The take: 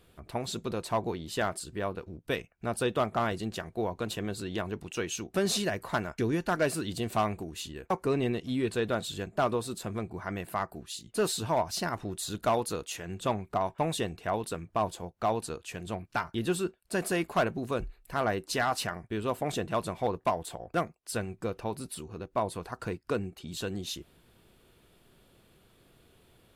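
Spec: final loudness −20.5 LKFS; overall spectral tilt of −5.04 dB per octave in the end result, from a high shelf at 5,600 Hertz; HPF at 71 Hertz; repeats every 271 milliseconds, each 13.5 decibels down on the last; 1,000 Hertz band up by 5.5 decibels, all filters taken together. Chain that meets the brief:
high-pass filter 71 Hz
parametric band 1,000 Hz +7.5 dB
high-shelf EQ 5,600 Hz −6 dB
repeating echo 271 ms, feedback 21%, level −13.5 dB
level +9.5 dB

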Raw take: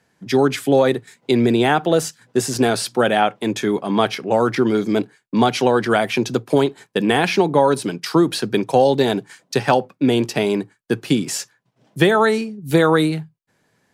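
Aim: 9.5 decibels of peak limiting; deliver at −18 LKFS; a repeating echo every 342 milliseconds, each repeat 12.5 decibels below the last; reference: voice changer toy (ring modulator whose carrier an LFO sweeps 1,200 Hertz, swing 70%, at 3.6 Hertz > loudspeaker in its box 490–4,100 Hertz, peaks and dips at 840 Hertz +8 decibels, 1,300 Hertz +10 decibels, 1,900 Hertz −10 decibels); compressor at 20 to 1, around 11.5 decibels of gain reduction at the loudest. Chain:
downward compressor 20 to 1, threshold −21 dBFS
brickwall limiter −17 dBFS
repeating echo 342 ms, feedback 24%, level −12.5 dB
ring modulator whose carrier an LFO sweeps 1,200 Hz, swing 70%, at 3.6 Hz
loudspeaker in its box 490–4,100 Hz, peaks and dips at 840 Hz +8 dB, 1,300 Hz +10 dB, 1,900 Hz −10 dB
level +10 dB

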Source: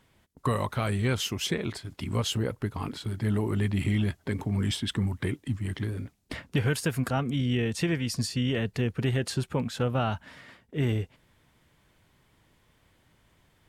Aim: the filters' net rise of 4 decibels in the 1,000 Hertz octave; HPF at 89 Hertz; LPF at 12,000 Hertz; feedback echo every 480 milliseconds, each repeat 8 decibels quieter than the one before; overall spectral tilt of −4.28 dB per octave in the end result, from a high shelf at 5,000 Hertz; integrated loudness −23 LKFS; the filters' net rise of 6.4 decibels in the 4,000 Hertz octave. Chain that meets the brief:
high-pass filter 89 Hz
low-pass filter 12,000 Hz
parametric band 1,000 Hz +4.5 dB
parametric band 4,000 Hz +5 dB
high-shelf EQ 5,000 Hz +7.5 dB
repeating echo 480 ms, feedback 40%, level −8 dB
level +4.5 dB

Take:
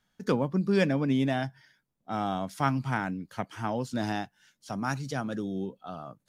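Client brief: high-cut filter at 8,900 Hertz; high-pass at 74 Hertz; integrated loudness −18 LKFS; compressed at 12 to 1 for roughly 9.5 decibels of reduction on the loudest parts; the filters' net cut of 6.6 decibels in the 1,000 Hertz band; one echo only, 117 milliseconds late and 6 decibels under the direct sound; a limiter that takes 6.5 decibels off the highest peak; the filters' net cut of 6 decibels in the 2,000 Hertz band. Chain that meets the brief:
high-pass filter 74 Hz
low-pass filter 8,900 Hz
parametric band 1,000 Hz −8.5 dB
parametric band 2,000 Hz −4.5 dB
downward compressor 12 to 1, threshold −31 dBFS
brickwall limiter −28 dBFS
single-tap delay 117 ms −6 dB
level +19.5 dB

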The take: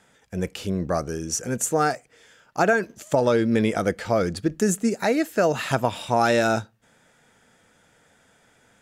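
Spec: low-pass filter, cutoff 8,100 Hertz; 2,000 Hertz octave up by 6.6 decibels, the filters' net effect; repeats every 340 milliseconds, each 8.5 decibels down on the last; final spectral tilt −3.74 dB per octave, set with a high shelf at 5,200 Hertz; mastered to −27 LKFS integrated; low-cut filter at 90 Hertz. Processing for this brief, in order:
high-pass filter 90 Hz
low-pass filter 8,100 Hz
parametric band 2,000 Hz +8 dB
high-shelf EQ 5,200 Hz +8 dB
repeating echo 340 ms, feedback 38%, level −8.5 dB
level −5.5 dB

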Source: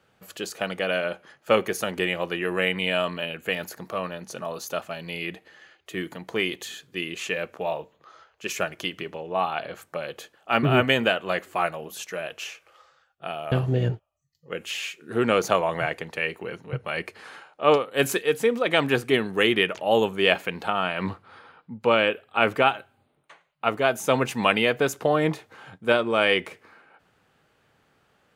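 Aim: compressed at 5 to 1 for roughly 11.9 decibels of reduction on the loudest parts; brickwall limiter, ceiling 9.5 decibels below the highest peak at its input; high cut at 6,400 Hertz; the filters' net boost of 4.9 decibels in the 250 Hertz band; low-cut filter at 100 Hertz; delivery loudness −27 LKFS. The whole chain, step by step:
high-pass filter 100 Hz
low-pass filter 6,400 Hz
parametric band 250 Hz +6.5 dB
downward compressor 5 to 1, threshold −27 dBFS
level +7 dB
brickwall limiter −13.5 dBFS

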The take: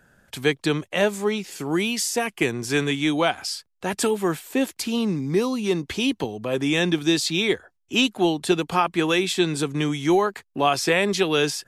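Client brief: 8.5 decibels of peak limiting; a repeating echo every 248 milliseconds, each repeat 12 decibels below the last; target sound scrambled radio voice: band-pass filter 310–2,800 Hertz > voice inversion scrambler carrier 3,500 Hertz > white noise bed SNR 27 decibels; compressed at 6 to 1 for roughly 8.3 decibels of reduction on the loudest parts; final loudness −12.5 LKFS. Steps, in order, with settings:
downward compressor 6 to 1, threshold −24 dBFS
brickwall limiter −20.5 dBFS
band-pass filter 310–2,800 Hz
repeating echo 248 ms, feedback 25%, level −12 dB
voice inversion scrambler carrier 3,500 Hz
white noise bed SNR 27 dB
level +18 dB

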